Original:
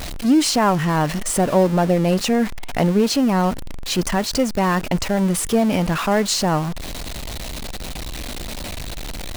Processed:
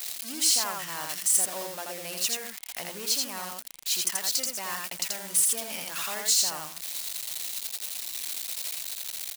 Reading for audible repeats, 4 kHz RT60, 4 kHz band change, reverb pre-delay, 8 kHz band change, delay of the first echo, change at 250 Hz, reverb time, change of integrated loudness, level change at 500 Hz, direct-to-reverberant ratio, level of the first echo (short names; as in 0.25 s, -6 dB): 1, none, -3.0 dB, none, +2.0 dB, 83 ms, -28.0 dB, none, -8.5 dB, -21.0 dB, none, -3.0 dB